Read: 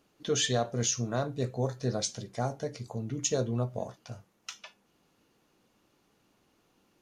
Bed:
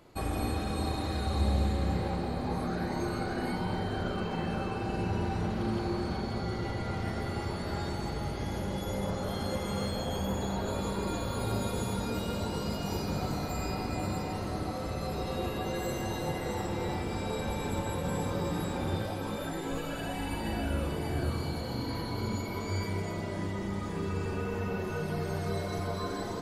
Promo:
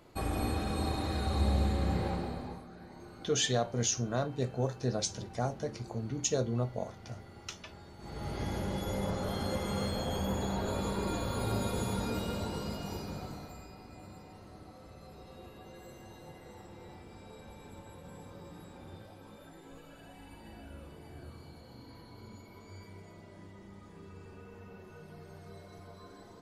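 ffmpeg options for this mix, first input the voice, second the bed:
-filter_complex "[0:a]adelay=3000,volume=-1.5dB[a];[1:a]volume=15.5dB,afade=t=out:st=2.08:d=0.56:silence=0.149624,afade=t=in:st=7.98:d=0.43:silence=0.149624,afade=t=out:st=12.06:d=1.62:silence=0.158489[b];[a][b]amix=inputs=2:normalize=0"

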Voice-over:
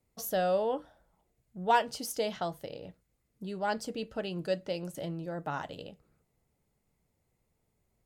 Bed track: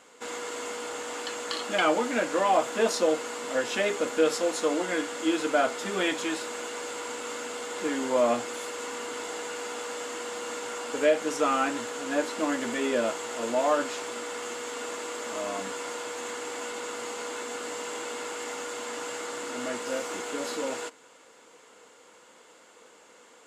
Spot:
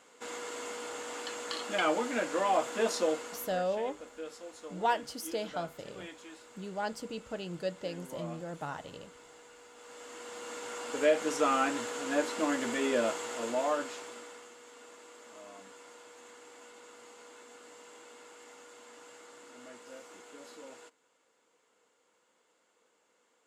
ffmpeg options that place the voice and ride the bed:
-filter_complex "[0:a]adelay=3150,volume=-3.5dB[a];[1:a]volume=12dB,afade=t=out:st=3.04:d=0.64:silence=0.188365,afade=t=in:st=9.74:d=1.49:silence=0.141254,afade=t=out:st=13.09:d=1.42:silence=0.177828[b];[a][b]amix=inputs=2:normalize=0"

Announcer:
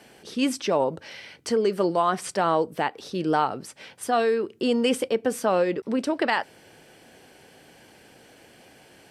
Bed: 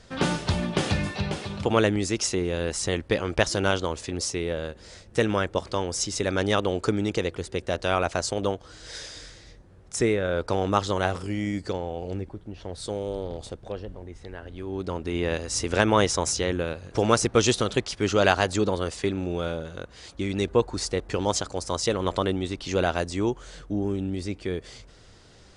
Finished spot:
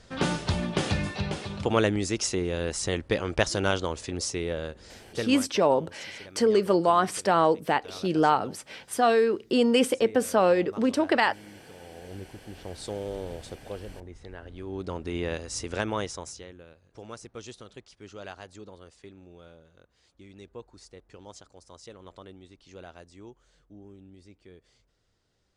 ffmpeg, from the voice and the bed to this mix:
-filter_complex "[0:a]adelay=4900,volume=1dB[a];[1:a]volume=16dB,afade=t=out:st=4.79:d=0.71:silence=0.105925,afade=t=in:st=11.75:d=0.89:silence=0.125893,afade=t=out:st=15.12:d=1.41:silence=0.125893[b];[a][b]amix=inputs=2:normalize=0"

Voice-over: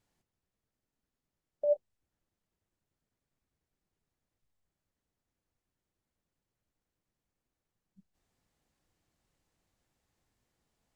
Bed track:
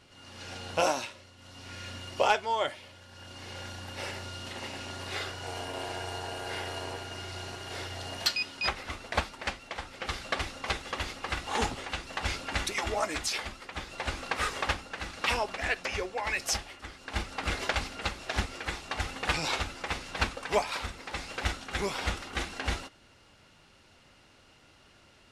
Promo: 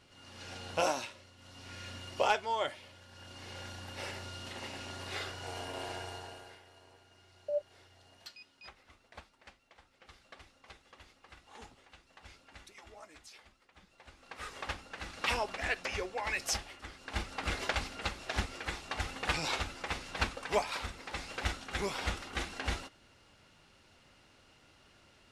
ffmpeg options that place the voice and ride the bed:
-filter_complex "[0:a]adelay=5850,volume=-5.5dB[a];[1:a]volume=15dB,afade=t=out:st=5.91:d=0.68:silence=0.11885,afade=t=in:st=14.18:d=1.1:silence=0.112202[b];[a][b]amix=inputs=2:normalize=0"

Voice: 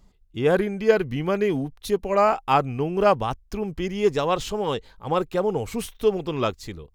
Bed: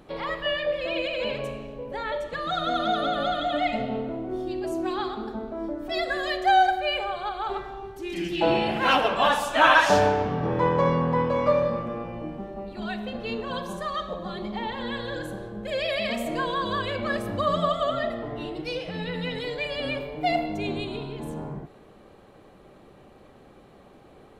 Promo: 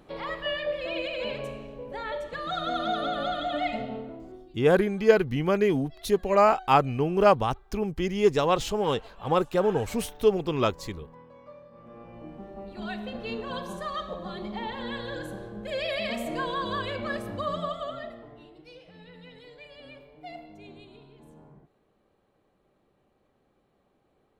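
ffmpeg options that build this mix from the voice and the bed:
-filter_complex "[0:a]adelay=4200,volume=-0.5dB[a];[1:a]volume=20.5dB,afade=t=out:st=3.69:d=0.85:silence=0.0668344,afade=t=in:st=11.71:d=1.13:silence=0.0630957,afade=t=out:st=16.84:d=1.64:silence=0.177828[b];[a][b]amix=inputs=2:normalize=0"

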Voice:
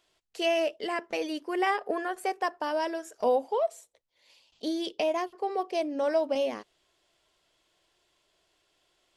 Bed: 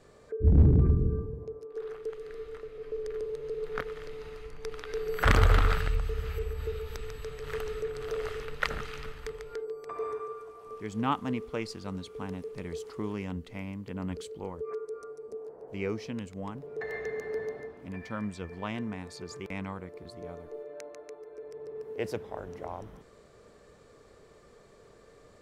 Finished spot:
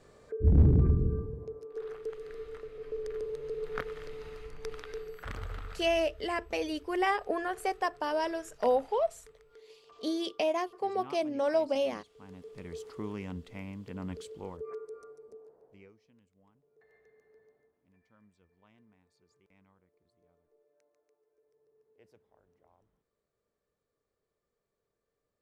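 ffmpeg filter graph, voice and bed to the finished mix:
-filter_complex "[0:a]adelay=5400,volume=-1.5dB[a];[1:a]volume=13.5dB,afade=t=out:st=4.71:d=0.52:silence=0.141254,afade=t=in:st=12.14:d=0.67:silence=0.177828,afade=t=out:st=14.57:d=1.36:silence=0.0530884[b];[a][b]amix=inputs=2:normalize=0"

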